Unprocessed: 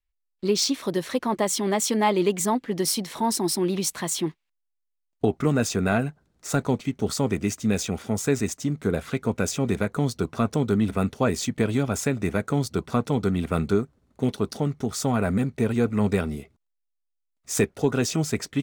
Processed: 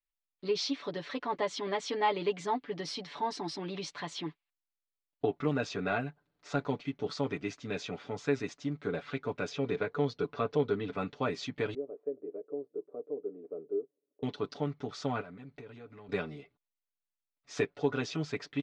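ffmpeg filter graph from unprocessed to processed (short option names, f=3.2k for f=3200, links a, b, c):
-filter_complex "[0:a]asettb=1/sr,asplit=3[a][b][c];[a]atrim=end=9.494[d];[b]atrim=start=9.49:end=10.93,asetpts=PTS-STARTPTS,afade=t=in:d=0.004:c=qsin,afade=t=out:st=1.436:d=0.004:c=qsin,lowpass=6.5k,equalizer=f=450:t=o:w=0.2:g=8.5[e];[c]atrim=start=10.926[f];[d][e]acrossfade=d=0.004:c1=hsin:c2=qsin[g];[g][f]acrossfade=d=0.004:c1=qsin:c2=hsin,asettb=1/sr,asplit=3[h][i][j];[h]atrim=end=11.744[k];[i]atrim=start=11.74:end=14.23,asetpts=PTS-STARTPTS,afade=t=in:d=0.004:c=qsin,afade=t=out:st=2.486:d=0.004:c=qsin,asuperpass=centerf=390:order=4:qfactor=2.2,aecho=1:1:1.7:0.36,atrim=end_sample=109809[l];[j]atrim=start=14.226[m];[k][l]acrossfade=d=0.004:c1=hsin:c2=qsin[n];[n][m]acrossfade=d=0.004:c1=qsin:c2=hsin,asettb=1/sr,asplit=3[o][p][q];[o]atrim=end=15.214[r];[p]atrim=start=15.21:end=16.09,asetpts=PTS-STARTPTS,afade=t=in:d=0.004:c=qsin,afade=t=out:st=0.876:d=0.004:c=qsin,acompressor=threshold=-34dB:ratio=6:attack=3.2:release=140:knee=1:detection=peak,asoftclip=type=hard:threshold=-27.5dB[s];[q]atrim=start=16.086[t];[r][s]acrossfade=d=0.004:c1=hsin:c2=qsin[u];[u][t]acrossfade=d=0.004:c1=qsin:c2=hsin,lowpass=f=4.5k:w=0.5412,lowpass=f=4.5k:w=1.3066,lowshelf=f=230:g=-11,aecho=1:1:6.9:0.71,volume=-7.5dB"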